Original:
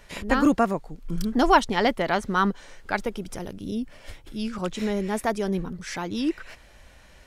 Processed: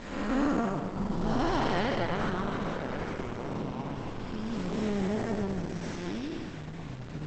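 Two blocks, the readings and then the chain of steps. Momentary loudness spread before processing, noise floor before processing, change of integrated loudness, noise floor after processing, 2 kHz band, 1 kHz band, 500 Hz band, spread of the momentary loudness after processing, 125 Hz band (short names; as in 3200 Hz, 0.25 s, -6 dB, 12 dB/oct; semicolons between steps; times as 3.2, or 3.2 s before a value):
16 LU, -52 dBFS, -7.0 dB, -40 dBFS, -8.0 dB, -9.0 dB, -6.0 dB, 10 LU, +0.5 dB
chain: time blur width 0.395 s; on a send: narrowing echo 0.141 s, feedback 77%, band-pass 1300 Hz, level -12 dB; on the sum: echoes that change speed 0.401 s, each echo -6 st, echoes 3, each echo -6 dB; Opus 12 kbps 48000 Hz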